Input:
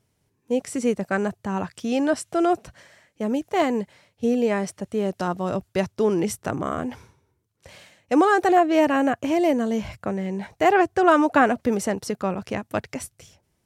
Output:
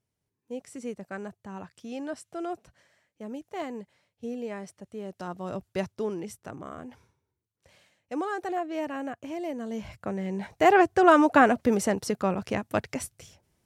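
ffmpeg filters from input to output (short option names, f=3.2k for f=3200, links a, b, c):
-af "volume=6dB,afade=t=in:st=5.06:d=0.75:silence=0.446684,afade=t=out:st=5.81:d=0.42:silence=0.446684,afade=t=in:st=9.53:d=1.17:silence=0.237137"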